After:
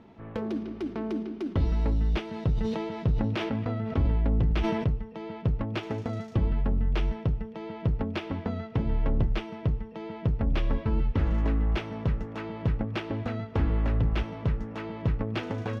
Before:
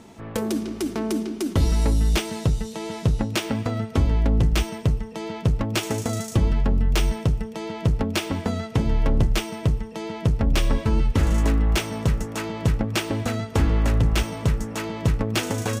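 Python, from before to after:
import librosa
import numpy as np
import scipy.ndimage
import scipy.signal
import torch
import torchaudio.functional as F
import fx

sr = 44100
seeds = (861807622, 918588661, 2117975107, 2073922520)

y = fx.air_absorb(x, sr, metres=310.0)
y = fx.sustainer(y, sr, db_per_s=29.0, at=(2.3, 4.86))
y = y * librosa.db_to_amplitude(-5.5)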